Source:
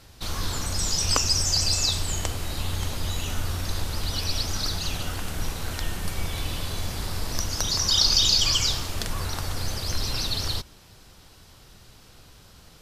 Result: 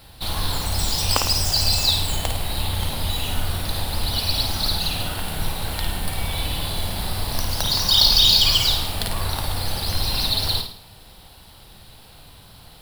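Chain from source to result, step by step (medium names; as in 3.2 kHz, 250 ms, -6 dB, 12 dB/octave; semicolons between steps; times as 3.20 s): median filter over 3 samples; FFT filter 190 Hz 0 dB, 390 Hz -3 dB, 840 Hz +5 dB, 1.2 kHz -2 dB, 2.3 kHz 0 dB, 4.1 kHz +5 dB, 6.3 kHz -10 dB, 10 kHz +8 dB; on a send: flutter echo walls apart 9.2 m, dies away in 0.51 s; on the sum: trim +3 dB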